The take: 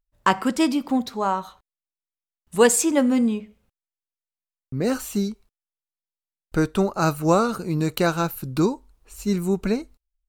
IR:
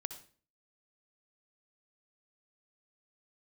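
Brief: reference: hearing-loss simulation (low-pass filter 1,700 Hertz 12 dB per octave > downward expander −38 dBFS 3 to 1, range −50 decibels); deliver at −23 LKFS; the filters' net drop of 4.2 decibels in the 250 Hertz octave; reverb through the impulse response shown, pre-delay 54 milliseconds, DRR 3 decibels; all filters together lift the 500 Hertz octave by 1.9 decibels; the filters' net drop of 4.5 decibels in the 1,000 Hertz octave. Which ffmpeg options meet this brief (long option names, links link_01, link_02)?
-filter_complex "[0:a]equalizer=frequency=250:width_type=o:gain=-7,equalizer=frequency=500:width_type=o:gain=5.5,equalizer=frequency=1000:width_type=o:gain=-6.5,asplit=2[link_01][link_02];[1:a]atrim=start_sample=2205,adelay=54[link_03];[link_02][link_03]afir=irnorm=-1:irlink=0,volume=-1.5dB[link_04];[link_01][link_04]amix=inputs=2:normalize=0,lowpass=1700,agate=range=-50dB:threshold=-38dB:ratio=3,volume=-0.5dB"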